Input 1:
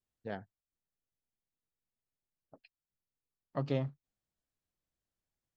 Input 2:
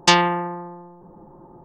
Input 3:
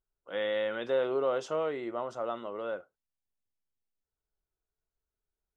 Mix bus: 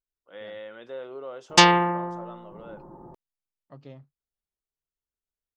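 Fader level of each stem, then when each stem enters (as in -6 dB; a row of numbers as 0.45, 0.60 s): -12.5, 0.0, -9.0 dB; 0.15, 1.50, 0.00 s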